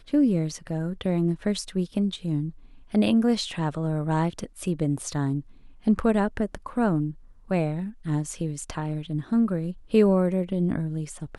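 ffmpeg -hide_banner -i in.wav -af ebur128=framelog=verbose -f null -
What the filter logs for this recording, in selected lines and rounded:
Integrated loudness:
  I:         -26.2 LUFS
  Threshold: -36.3 LUFS
Loudness range:
  LRA:         2.2 LU
  Threshold: -46.6 LUFS
  LRA low:   -27.8 LUFS
  LRA high:  -25.7 LUFS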